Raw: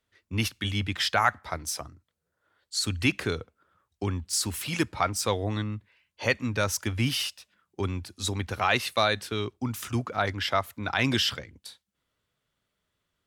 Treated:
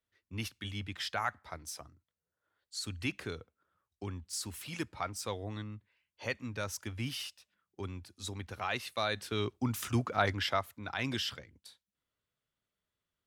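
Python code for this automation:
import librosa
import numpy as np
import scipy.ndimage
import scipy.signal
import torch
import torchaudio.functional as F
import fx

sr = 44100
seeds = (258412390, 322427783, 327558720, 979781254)

y = fx.gain(x, sr, db=fx.line((8.94, -11.0), (9.46, -2.0), (10.33, -2.0), (10.8, -10.0)))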